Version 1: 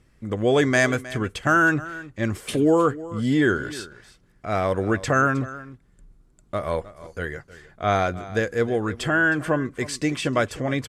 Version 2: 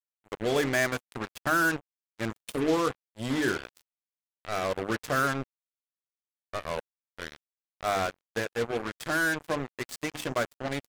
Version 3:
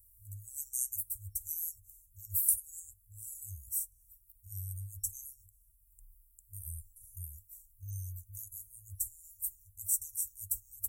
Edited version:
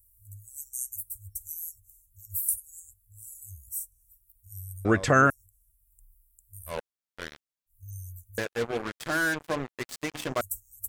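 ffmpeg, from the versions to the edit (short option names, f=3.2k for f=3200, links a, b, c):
-filter_complex "[1:a]asplit=2[a][b];[2:a]asplit=4[c][d][e][f];[c]atrim=end=4.852[g];[0:a]atrim=start=4.848:end=5.302[h];[d]atrim=start=5.298:end=6.76[i];[a]atrim=start=6.66:end=7.76[j];[e]atrim=start=7.66:end=8.382[k];[b]atrim=start=8.378:end=10.412[l];[f]atrim=start=10.408[m];[g][h]acrossfade=d=0.004:c1=hsin:c2=hsin[n];[n][i]acrossfade=d=0.004:c1=hsin:c2=hsin[o];[o][j]acrossfade=d=0.1:c1=tri:c2=tri[p];[p][k]acrossfade=d=0.1:c1=tri:c2=tri[q];[q][l]acrossfade=d=0.004:c1=hsin:c2=hsin[r];[r][m]acrossfade=d=0.004:c1=hsin:c2=hsin"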